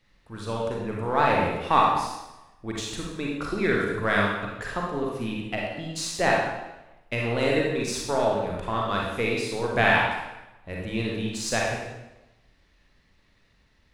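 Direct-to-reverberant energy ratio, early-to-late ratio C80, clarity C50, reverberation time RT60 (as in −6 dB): −3.0 dB, 3.5 dB, −0.5 dB, 1.0 s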